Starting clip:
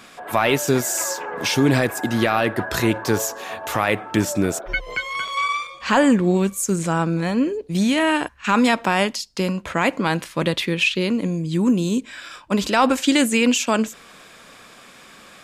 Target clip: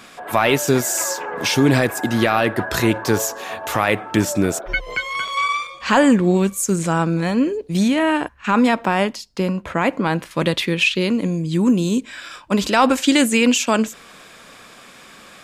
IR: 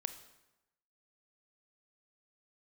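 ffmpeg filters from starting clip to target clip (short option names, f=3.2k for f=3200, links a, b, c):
-filter_complex "[0:a]asettb=1/sr,asplit=3[a][b][c];[a]atrim=end=7.884[d];[b]atrim=start=7.88:end=10.31,asetpts=PTS-STARTPTS,afade=t=in:d=0.004:c=qsin,afade=t=out:st=2.426:d=0.004:c=qsin,equalizer=f=7.4k:t=o:w=3:g=-8[e];[c]atrim=start=10.306[f];[d][e]acrossfade=d=0.004:c1=hsin:c2=qsin[g];[g][f]acrossfade=d=0.004:c1=qsin:c2=hsin,volume=2dB"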